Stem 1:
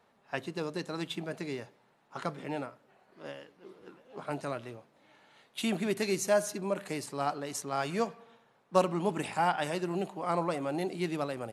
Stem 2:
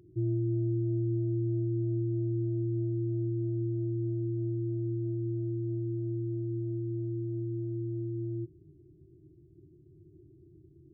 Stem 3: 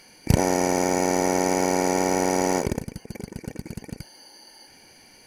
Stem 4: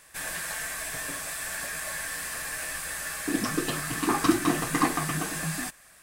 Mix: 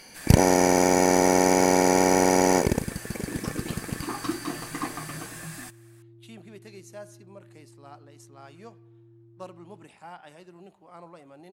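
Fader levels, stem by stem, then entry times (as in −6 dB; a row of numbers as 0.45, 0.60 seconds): −16.0, −19.5, +2.5, −8.0 decibels; 0.65, 1.40, 0.00, 0.00 seconds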